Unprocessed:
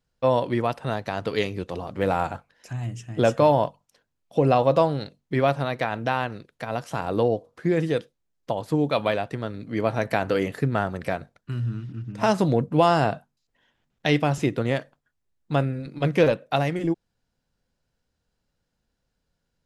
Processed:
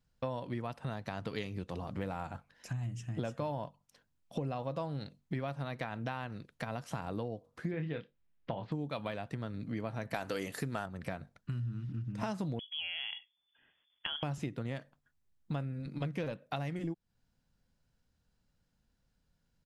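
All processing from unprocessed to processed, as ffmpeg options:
-filter_complex "[0:a]asettb=1/sr,asplit=3[s0][s1][s2];[s0]atrim=end=7.714[s3];[s1]atrim=start=7.71:end=8.72,asetpts=PTS-STARTPTS,afade=t=in:d=0.004:c=qsin,afade=t=out:st=1.006:d=0.004:c=qsin,lowpass=f=3600:w=0.5412,lowpass=f=3600:w=1.3066,equalizer=f=2200:w=1.4:g=3.5,asplit=2[s4][s5];[s5]adelay=26,volume=0.473[s6];[s4][s6]amix=inputs=2:normalize=0,atrim=end_sample=44541[s7];[s2]atrim=start=8.716[s8];[s3][s7]acrossfade=d=0.004:c1=hsin:c2=qsin[s9];[s9][s8]acrossfade=d=0.004:c1=qsin:c2=hsin,asettb=1/sr,asplit=3[s10][s11][s12];[s10]atrim=end=10.144[s13];[s11]atrim=start=10.14:end=10.86,asetpts=PTS-STARTPTS,afade=t=in:d=0.004:c=qsin,afade=t=out:st=0.716:d=0.004:c=qsin,bass=f=250:g=-9,treble=f=4000:g=10,acontrast=78[s14];[s12]atrim=start=10.856[s15];[s13][s14]acrossfade=d=0.004:c1=hsin:c2=qsin[s16];[s16][s15]acrossfade=d=0.004:c1=qsin:c2=hsin,asettb=1/sr,asplit=3[s17][s18][s19];[s17]atrim=end=12.594[s20];[s18]atrim=start=12.59:end=14.23,asetpts=PTS-STARTPTS,afade=t=in:d=0.004:c=qsin,afade=t=out:st=1.636:d=0.004:c=qsin,acompressor=threshold=0.0501:ratio=5:attack=3.2:release=140:knee=1:detection=peak,lowpass=f=3000:t=q:w=0.5098,lowpass=f=3000:t=q:w=0.6013,lowpass=f=3000:t=q:w=0.9,lowpass=f=3000:t=q:w=2.563,afreqshift=-3500[s21];[s19]atrim=start=14.226[s22];[s20][s21]acrossfade=d=0.004:c1=hsin:c2=qsin[s23];[s23][s22]acrossfade=d=0.004:c1=qsin:c2=hsin,firequalizer=gain_entry='entry(200,0);entry(390,-7);entry(1000,-4)':delay=0.05:min_phase=1,acompressor=threshold=0.0141:ratio=5,volume=1.19"

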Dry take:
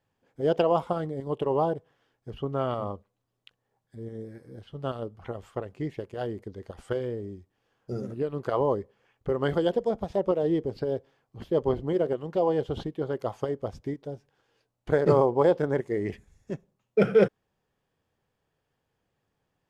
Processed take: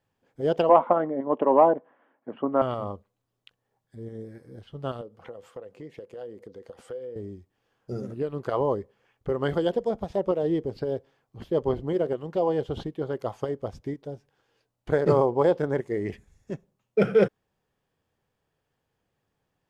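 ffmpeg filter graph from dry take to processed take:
-filter_complex "[0:a]asettb=1/sr,asplit=3[s0][s1][s2];[s0]atrim=end=0.694[s3];[s1]atrim=start=0.69:end=2.62,asetpts=PTS-STARTPTS,afade=t=in:d=0.004:c=qsin,afade=t=out:st=1.926:d=0.004:c=qsin,highpass=f=230:w=0.5412,highpass=f=230:w=1.3066,equalizer=f=250:t=q:w=4:g=6,equalizer=f=420:t=q:w=4:g=-6,equalizer=f=600:t=q:w=4:g=6,equalizer=f=990:t=q:w=4:g=5,lowpass=f=2100:w=0.5412,lowpass=f=2100:w=1.3066,acontrast=48[s4];[s2]atrim=start=2.616[s5];[s3][s4]acrossfade=d=0.004:c1=hsin:c2=qsin[s6];[s6][s5]acrossfade=d=0.004:c1=qsin:c2=hsin,asettb=1/sr,asplit=3[s7][s8][s9];[s7]atrim=end=5.014[s10];[s8]atrim=start=5.01:end=7.16,asetpts=PTS-STARTPTS,afade=t=in:d=0.004:c=qsin,afade=t=out:st=2.146:d=0.004:c=qsin,highpass=160,equalizer=f=500:w=6.8:g=14,acompressor=threshold=0.00794:ratio=2.5:attack=3.2:release=140:knee=1:detection=peak[s11];[s9]atrim=start=7.156[s12];[s10][s11]acrossfade=d=0.004:c1=hsin:c2=qsin[s13];[s13][s12]acrossfade=d=0.004:c1=qsin:c2=hsin"

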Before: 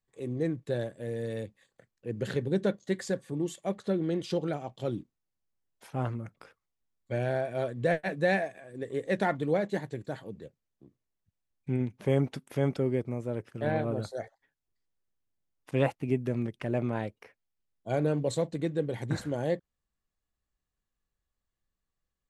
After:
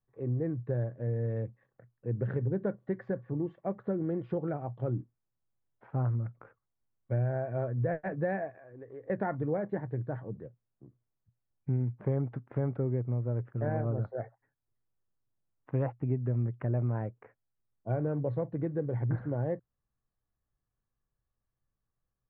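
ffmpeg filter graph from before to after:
-filter_complex "[0:a]asettb=1/sr,asplit=3[s0][s1][s2];[s0]atrim=end=8.504[s3];[s1]atrim=start=8.5:end=9.1,asetpts=PTS-STARTPTS,afade=t=in:d=0.004:c=qsin,afade=t=out:st=0.596:d=0.004:c=qsin,equalizer=f=150:w=0.79:g=-11.5,acompressor=threshold=0.00355:ratio=2:attack=3.2:release=140:knee=1:detection=peak[s4];[s2]atrim=start=9.096[s5];[s3][s4]acrossfade=d=0.004:c1=hsin:c2=qsin[s6];[s6][s5]acrossfade=d=0.004:c1=qsin:c2=hsin,equalizer=f=120:t=o:w=0.3:g=12,acompressor=threshold=0.0355:ratio=2.5,lowpass=f=1600:w=0.5412,lowpass=f=1600:w=1.3066"

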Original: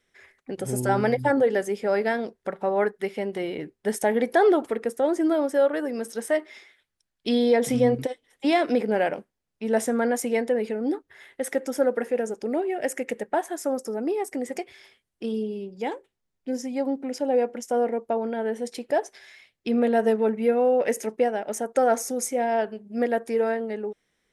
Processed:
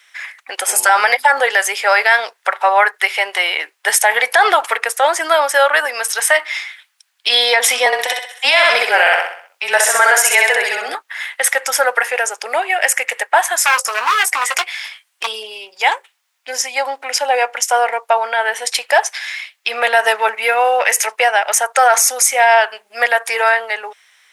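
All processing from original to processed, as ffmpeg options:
-filter_complex "[0:a]asettb=1/sr,asplit=3[s0][s1][s2];[s0]atrim=end=7.864[s3];[s1]atrim=start=7.86:end=10.95,asetpts=PTS-STARTPTS,afade=t=in:d=0.004:c=qsin,afade=t=out:st=3.086:d=0.004:c=qsin,aecho=1:1:64|128|192|256|320|384:0.708|0.311|0.137|0.0603|0.0265|0.0117,atrim=end_sample=136269,afreqshift=-25[s4];[s2]atrim=start=10.946[s5];[s3][s4]acrossfade=d=0.004:c1=hsin:c2=qsin[s6];[s6][s5]acrossfade=d=0.004:c1=qsin:c2=hsin,asettb=1/sr,asplit=3[s7][s8][s9];[s7]atrim=end=13.574[s10];[s8]atrim=start=13.57:end=15.27,asetpts=PTS-STARTPTS,afade=t=in:d=0.004:c=qsin,afade=t=out:st=1.696:d=0.004:c=qsin,highpass=88,aeval=exprs='0.0473*(abs(mod(val(0)/0.0473+3,4)-2)-1)':c=same,asplit=2[s11][s12];[s12]adelay=17,volume=0.355[s13];[s11][s13]amix=inputs=2:normalize=0,atrim=end_sample=74970[s14];[s9]atrim=start=15.266[s15];[s10][s14]acrossfade=d=0.004:c1=hsin:c2=qsin[s16];[s16][s15]acrossfade=d=0.004:c1=qsin:c2=hsin,highpass=f=890:w=0.5412,highpass=f=890:w=1.3066,equalizer=f=2600:w=1.8:g=3.5,alimiter=level_in=14.1:limit=0.891:release=50:level=0:latency=1,volume=0.891"

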